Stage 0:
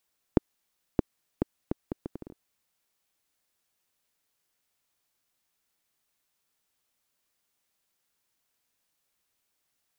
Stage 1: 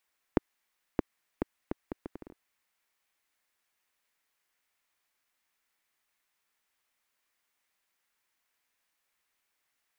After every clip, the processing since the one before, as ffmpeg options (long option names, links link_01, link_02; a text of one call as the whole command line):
ffmpeg -i in.wav -af "equalizer=frequency=125:width_type=o:width=1:gain=-7,equalizer=frequency=1000:width_type=o:width=1:gain=4,equalizer=frequency=2000:width_type=o:width=1:gain=8,volume=-3.5dB" out.wav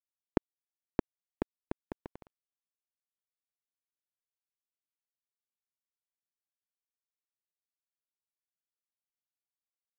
ffmpeg -i in.wav -af "aeval=exprs='sgn(val(0))*max(abs(val(0))-0.0133,0)':channel_layout=same,volume=1dB" out.wav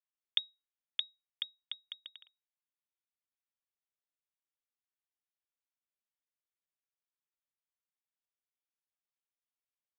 ffmpeg -i in.wav -af "lowpass=frequency=3200:width_type=q:width=0.5098,lowpass=frequency=3200:width_type=q:width=0.6013,lowpass=frequency=3200:width_type=q:width=0.9,lowpass=frequency=3200:width_type=q:width=2.563,afreqshift=-3800,volume=-3.5dB" out.wav